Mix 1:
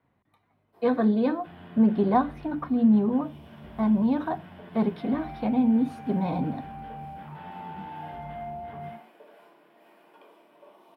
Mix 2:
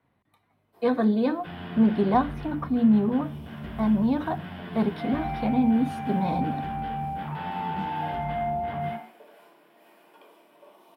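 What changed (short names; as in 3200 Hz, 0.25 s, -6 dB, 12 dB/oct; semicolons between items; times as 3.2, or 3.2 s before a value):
second sound +8.5 dB; master: add high shelf 4100 Hz +8 dB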